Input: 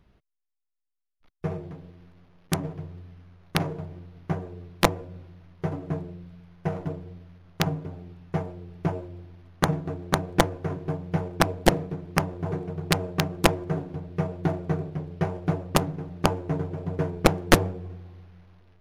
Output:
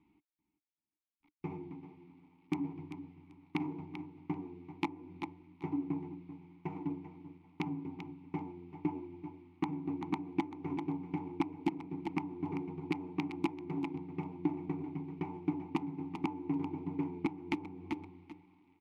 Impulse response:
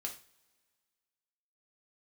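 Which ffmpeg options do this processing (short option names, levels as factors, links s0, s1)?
-filter_complex "[0:a]asplit=2[s0][s1];[s1]aecho=0:1:388|776:0.178|0.032[s2];[s0][s2]amix=inputs=2:normalize=0,acompressor=threshold=0.0562:ratio=16,asplit=3[s3][s4][s5];[s3]bandpass=f=300:t=q:w=8,volume=1[s6];[s4]bandpass=f=870:t=q:w=8,volume=0.501[s7];[s5]bandpass=f=2240:t=q:w=8,volume=0.355[s8];[s6][s7][s8]amix=inputs=3:normalize=0,equalizer=f=550:t=o:w=0.73:g=-10,volume=2.82"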